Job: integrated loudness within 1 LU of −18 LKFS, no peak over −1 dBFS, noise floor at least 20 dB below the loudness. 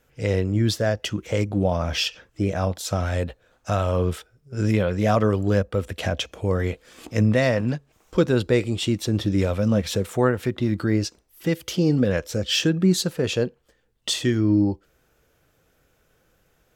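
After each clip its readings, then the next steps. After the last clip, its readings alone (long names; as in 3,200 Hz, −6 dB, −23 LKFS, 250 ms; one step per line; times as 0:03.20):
integrated loudness −23.5 LKFS; sample peak −7.0 dBFS; target loudness −18.0 LKFS
→ level +5.5 dB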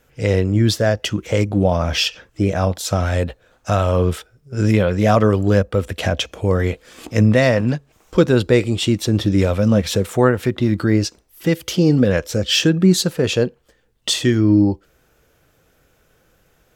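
integrated loudness −18.0 LKFS; sample peak −1.5 dBFS; background noise floor −60 dBFS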